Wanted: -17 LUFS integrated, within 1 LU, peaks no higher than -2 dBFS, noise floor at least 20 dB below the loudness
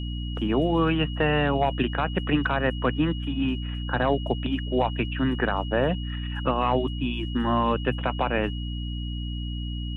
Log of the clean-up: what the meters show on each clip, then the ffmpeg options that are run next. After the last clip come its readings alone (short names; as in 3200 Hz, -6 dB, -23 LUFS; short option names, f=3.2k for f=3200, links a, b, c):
hum 60 Hz; harmonics up to 300 Hz; hum level -28 dBFS; steady tone 2900 Hz; tone level -40 dBFS; loudness -26.0 LUFS; peak -11.5 dBFS; loudness target -17.0 LUFS
-> -af "bandreject=f=60:t=h:w=4,bandreject=f=120:t=h:w=4,bandreject=f=180:t=h:w=4,bandreject=f=240:t=h:w=4,bandreject=f=300:t=h:w=4"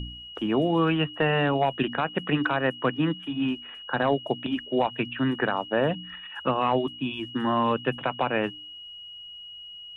hum none; steady tone 2900 Hz; tone level -40 dBFS
-> -af "bandreject=f=2.9k:w=30"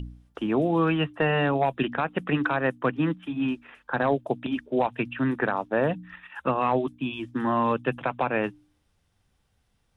steady tone none; loudness -26.5 LUFS; peak -12.5 dBFS; loudness target -17.0 LUFS
-> -af "volume=9.5dB"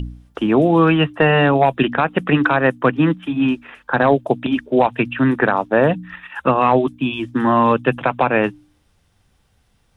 loudness -17.0 LUFS; peak -3.0 dBFS; noise floor -61 dBFS